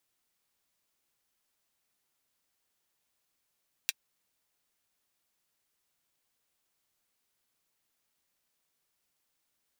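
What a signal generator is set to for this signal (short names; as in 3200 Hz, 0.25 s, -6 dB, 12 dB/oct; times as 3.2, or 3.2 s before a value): closed hi-hat, high-pass 2400 Hz, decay 0.04 s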